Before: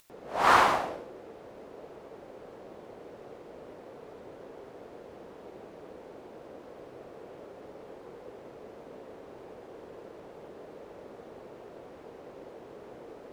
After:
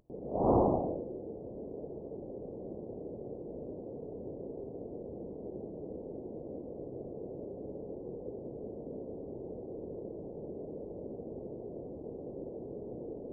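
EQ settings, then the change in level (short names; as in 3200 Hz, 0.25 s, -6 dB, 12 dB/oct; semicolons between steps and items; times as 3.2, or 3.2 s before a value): Gaussian blur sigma 17 samples; +9.5 dB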